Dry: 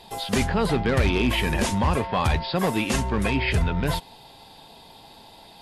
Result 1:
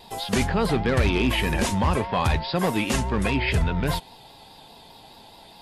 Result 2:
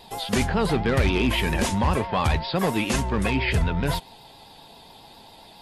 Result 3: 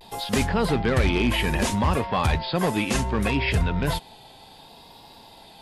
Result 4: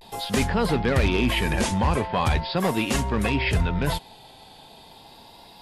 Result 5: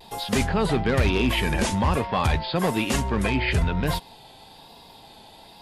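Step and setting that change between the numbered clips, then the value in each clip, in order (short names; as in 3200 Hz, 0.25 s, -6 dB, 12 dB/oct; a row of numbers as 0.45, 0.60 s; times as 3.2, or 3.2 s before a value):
vibrato, rate: 4.9, 7.4, 0.65, 0.4, 1.1 Hz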